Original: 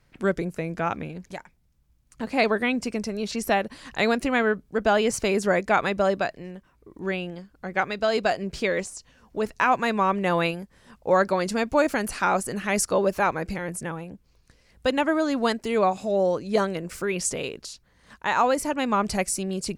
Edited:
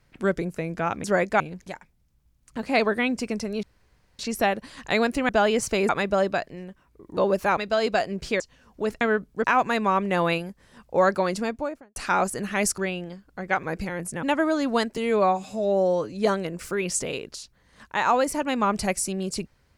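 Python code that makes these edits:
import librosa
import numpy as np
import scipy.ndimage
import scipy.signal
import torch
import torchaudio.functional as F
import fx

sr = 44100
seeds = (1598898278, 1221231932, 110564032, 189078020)

y = fx.studio_fade_out(x, sr, start_s=11.37, length_s=0.72)
y = fx.edit(y, sr, fx.insert_room_tone(at_s=3.27, length_s=0.56),
    fx.move(start_s=4.37, length_s=0.43, to_s=9.57),
    fx.move(start_s=5.4, length_s=0.36, to_s=1.04),
    fx.swap(start_s=7.04, length_s=0.85, other_s=12.91, other_length_s=0.41),
    fx.cut(start_s=8.71, length_s=0.25),
    fx.cut(start_s=13.92, length_s=1.0),
    fx.stretch_span(start_s=15.66, length_s=0.77, factor=1.5), tone=tone)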